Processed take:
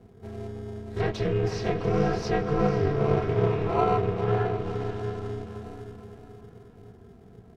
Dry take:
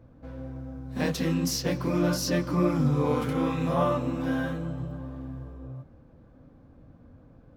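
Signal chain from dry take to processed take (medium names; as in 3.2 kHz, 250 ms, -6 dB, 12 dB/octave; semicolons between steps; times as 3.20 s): comb 3.4 ms, depth 75%; echo that smears into a reverb 500 ms, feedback 43%, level -7 dB; in parallel at -9 dB: sample-and-hold 26×; on the sum: ring modulator 150 Hz; low-pass that closes with the level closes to 2.7 kHz, closed at -22 dBFS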